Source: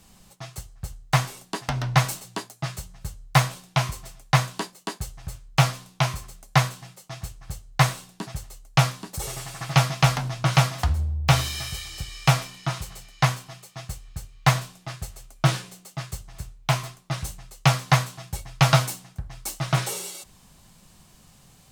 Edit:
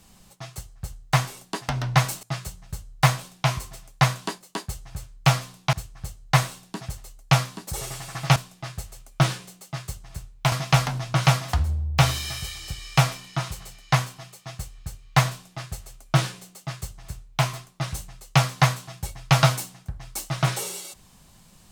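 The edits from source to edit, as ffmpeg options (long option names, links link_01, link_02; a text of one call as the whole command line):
ffmpeg -i in.wav -filter_complex "[0:a]asplit=5[link_01][link_02][link_03][link_04][link_05];[link_01]atrim=end=2.232[link_06];[link_02]atrim=start=2.548:end=6.052[link_07];[link_03]atrim=start=7.188:end=9.822[link_08];[link_04]atrim=start=14.598:end=16.762[link_09];[link_05]atrim=start=9.818[link_10];[link_06][link_07]acrossfade=duration=0.004:curve1=hsin:curve2=hsin[link_11];[link_11][link_08]acrossfade=duration=0.004:curve1=hsin:curve2=hsin[link_12];[link_12][link_09]acrossfade=duration=0.004:curve1=hsin:curve2=hsin[link_13];[link_13][link_10]acrossfade=duration=0.004:curve1=hsin:curve2=hsin" out.wav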